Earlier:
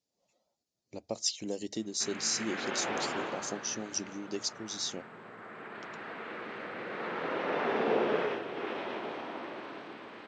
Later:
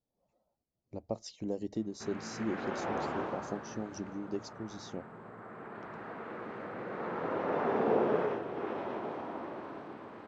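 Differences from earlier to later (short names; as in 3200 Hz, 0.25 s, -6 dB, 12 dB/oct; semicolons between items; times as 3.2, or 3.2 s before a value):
speech: add air absorption 140 m; master: remove weighting filter D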